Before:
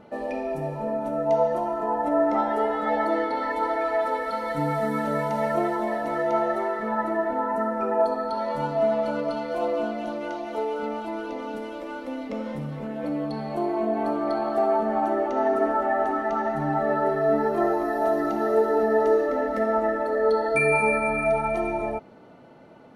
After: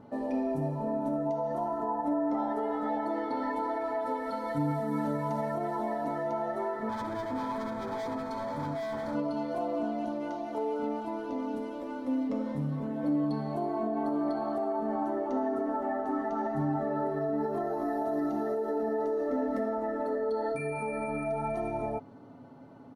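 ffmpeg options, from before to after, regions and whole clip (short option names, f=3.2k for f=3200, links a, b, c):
-filter_complex "[0:a]asettb=1/sr,asplit=3[a][b][c];[a]atrim=end=6.894[d];[b]atrim=start=6.89:end=9.15,asetpts=PTS-STARTPTS,afade=t=in:d=0.004:c=qsin,afade=t=out:st=2.256:d=0.004:c=qsin,asoftclip=type=hard:threshold=-28.5dB,asuperstop=centerf=2800:order=8:qfactor=6.4[e];[c]atrim=start=9.146[f];[d][e]acrossfade=d=0.004:c1=hsin:c2=qsin[g];[g][f]acrossfade=d=0.004:c1=qsin:c2=hsin,aecho=1:1:7.2:0.41,alimiter=limit=-19dB:level=0:latency=1:release=121,equalizer=f=100:t=o:w=0.67:g=12,equalizer=f=250:t=o:w=0.67:g=9,equalizer=f=1k:t=o:w=0.67:g=5,equalizer=f=2.5k:t=o:w=0.67:g=-7,volume=-7dB"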